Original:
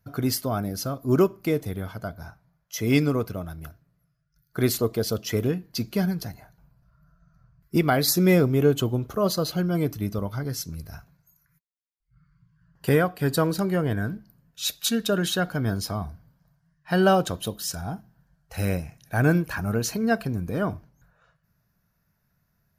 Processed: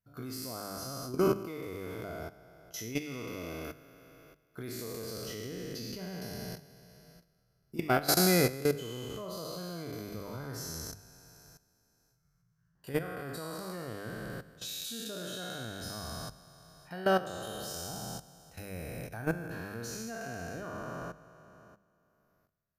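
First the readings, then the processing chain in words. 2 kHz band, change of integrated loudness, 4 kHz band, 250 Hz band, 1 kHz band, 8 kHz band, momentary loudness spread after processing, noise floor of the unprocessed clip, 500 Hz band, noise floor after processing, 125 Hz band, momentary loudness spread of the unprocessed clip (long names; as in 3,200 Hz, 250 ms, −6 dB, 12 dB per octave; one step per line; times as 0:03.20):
−8.0 dB, −10.5 dB, −7.0 dB, −12.0 dB, −7.5 dB, −6.0 dB, 16 LU, −72 dBFS, −9.5 dB, −73 dBFS, −14.0 dB, 15 LU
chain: peak hold with a decay on every bin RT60 2.38 s
output level in coarse steps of 16 dB
mains-hum notches 50/100/150/200 Hz
level −8 dB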